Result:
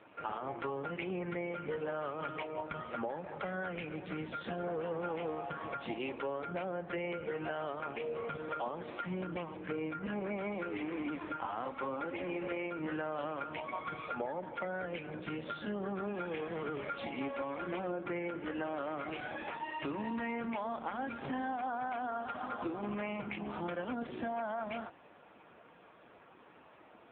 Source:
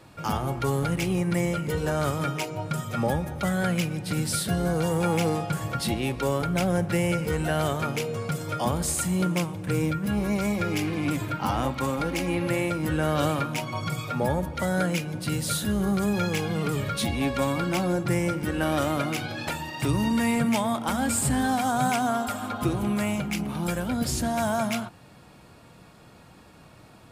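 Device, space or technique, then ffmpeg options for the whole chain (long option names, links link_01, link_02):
voicemail: -af "highpass=340,lowpass=2800,acompressor=threshold=-33dB:ratio=8" -ar 8000 -c:a libopencore_amrnb -b:a 5900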